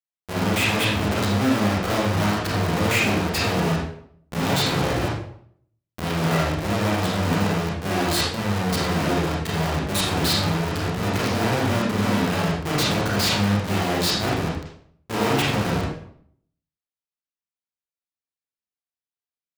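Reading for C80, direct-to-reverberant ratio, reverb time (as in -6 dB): 5.5 dB, -5.5 dB, 0.65 s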